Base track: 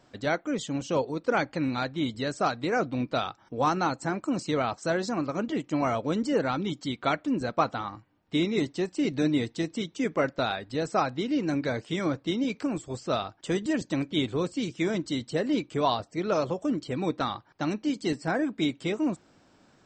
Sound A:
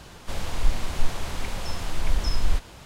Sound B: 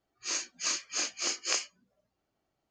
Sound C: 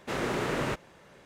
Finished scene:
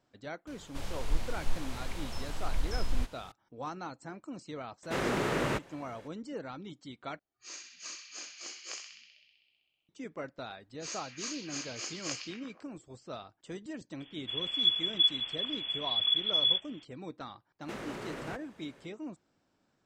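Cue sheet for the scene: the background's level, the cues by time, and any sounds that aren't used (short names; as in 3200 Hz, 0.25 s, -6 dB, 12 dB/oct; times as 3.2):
base track -14.5 dB
0.47 add A -8.5 dB
4.83 add C -0.5 dB
7.19 replace with B -13 dB + narrowing echo 64 ms, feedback 81%, band-pass 2900 Hz, level -4 dB
10.57 add B -8.5 dB + delay with a stepping band-pass 0.12 s, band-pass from 3300 Hz, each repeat -0.7 oct, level -2 dB
14 add A -12.5 dB + inverted band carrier 3400 Hz
17.61 add C -4.5 dB + compressor, threshold -33 dBFS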